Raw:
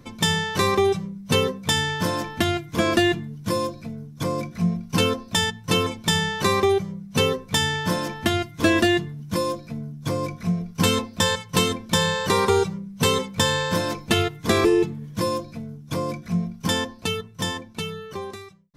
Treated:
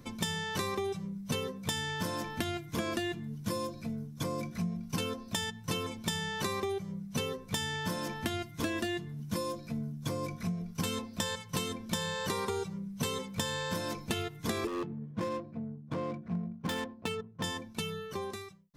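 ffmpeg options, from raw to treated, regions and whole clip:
-filter_complex "[0:a]asettb=1/sr,asplit=3[a][b][c];[a]atrim=end=14.674[d];[b]atrim=start=14.67:end=17.44,asetpts=PTS-STARTPTS,afade=t=in:d=0.004:c=qsin,afade=t=out:st=2.766:d=0.004:c=qsin,highpass=f=140:p=1,adynamicsmooth=sensitivity=2.5:basefreq=750,aeval=exprs='0.133*(abs(mod(val(0)/0.133+3,4)-2)-1)':c=same[e];[c]atrim=start=17.436[f];[d][e]acrossfade=d=0.004:c1=hsin:c2=qsin[g];[g][f]acrossfade=d=0.004:c1=qsin:c2=hsin,highshelf=f=7.1k:g=5.5,acompressor=threshold=-27dB:ratio=6,equalizer=f=220:w=6.7:g=3,volume=-4.5dB"

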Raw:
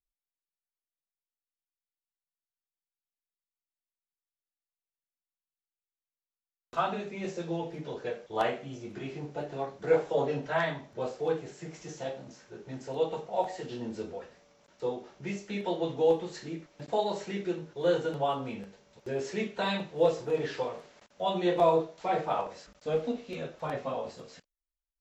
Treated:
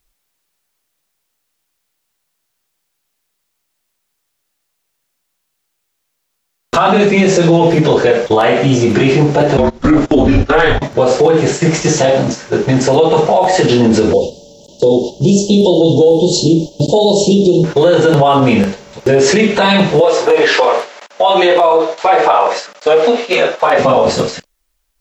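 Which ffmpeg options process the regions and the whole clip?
-filter_complex "[0:a]asettb=1/sr,asplit=3[a][b][c];[a]atrim=end=9.574[d];[b]atrim=start=9.57:end=10.82,asetpts=PTS-STARTPTS,afade=t=in:d=0.004:c=qsin,afade=t=out:st=1.246:d=0.004:c=qsin,agate=range=-23dB:threshold=-39dB:ratio=16:release=100:detection=peak,afreqshift=-180,acompressor=mode=upward:threshold=-39dB:ratio=2.5:attack=3.2:release=140:knee=2.83:detection=peak[e];[c]atrim=start=10.816[f];[d][e]acrossfade=d=0.004:c1=hsin:c2=qsin[g];[g][f]acrossfade=d=0.004:c1=qsin:c2=hsin,asettb=1/sr,asplit=3[h][i][j];[h]atrim=end=14.134[k];[i]atrim=start=14.13:end=17.64,asetpts=PTS-STARTPTS,afade=t=in:d=0.004:c=qsin,afade=t=out:st=3.506:d=0.004:c=qsin,asuperstop=centerf=1600:order=12:qfactor=0.72,equalizer=f=730:t=o:w=0.25:g=-13[l];[j]atrim=start=17.636[m];[k][l]acrossfade=d=0.004:c1=hsin:c2=qsin[n];[n][m]acrossfade=d=0.004:c1=qsin:c2=hsin,asettb=1/sr,asplit=3[o][p][q];[o]atrim=end=20.004[r];[p]atrim=start=20:end=23.79,asetpts=PTS-STARTPTS,afade=t=in:d=0.004:c=qsin,afade=t=out:st=3.786:d=0.004:c=qsin,highpass=550,highshelf=f=5.5k:g=-6.5[s];[q]atrim=start=23.786[t];[r][s]acrossfade=d=0.004:c1=hsin:c2=qsin[u];[u][t]acrossfade=d=0.004:c1=qsin:c2=hsin,acompressor=threshold=-30dB:ratio=5,agate=range=-7dB:threshold=-49dB:ratio=16:detection=peak,alimiter=level_in=33.5dB:limit=-1dB:release=50:level=0:latency=1,volume=-1dB"

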